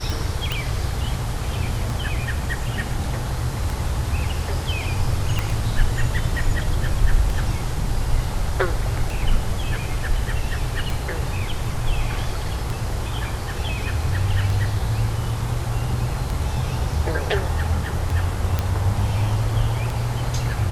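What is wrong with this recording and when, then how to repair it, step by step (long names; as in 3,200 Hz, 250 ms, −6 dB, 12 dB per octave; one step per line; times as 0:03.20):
scratch tick 33 1/3 rpm
0:00.52: click
0:05.39: click
0:18.59: click −8 dBFS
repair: click removal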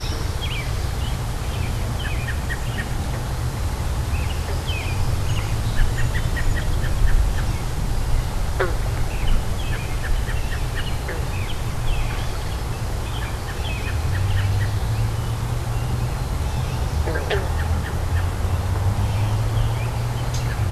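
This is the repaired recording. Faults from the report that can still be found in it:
none of them is left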